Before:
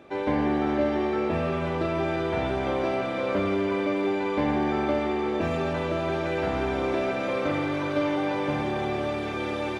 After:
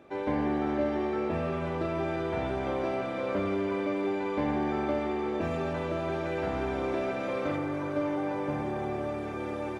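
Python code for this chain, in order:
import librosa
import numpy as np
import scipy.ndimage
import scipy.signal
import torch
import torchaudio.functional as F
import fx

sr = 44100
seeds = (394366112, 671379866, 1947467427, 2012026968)

y = fx.peak_eq(x, sr, hz=3600.0, db=fx.steps((0.0, -3.5), (7.56, -10.5)), octaves=1.5)
y = F.gain(torch.from_numpy(y), -4.0).numpy()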